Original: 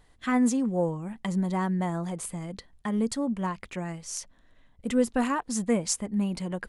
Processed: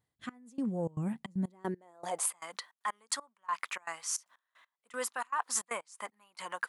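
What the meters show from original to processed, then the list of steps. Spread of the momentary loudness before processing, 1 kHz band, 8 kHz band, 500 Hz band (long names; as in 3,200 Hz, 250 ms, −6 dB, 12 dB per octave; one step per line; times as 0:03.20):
11 LU, −4.0 dB, −1.5 dB, −10.5 dB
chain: high-pass filter sweep 110 Hz → 1,100 Hz, 0:01.00–0:02.40
reversed playback
downward compressor 12 to 1, threshold −33 dBFS, peak gain reduction 16.5 dB
reversed playback
gate pattern "..x...xxx.xxx.x" 155 BPM −24 dB
tape wow and flutter 23 cents
high-shelf EQ 8,900 Hz +6.5 dB
level +3 dB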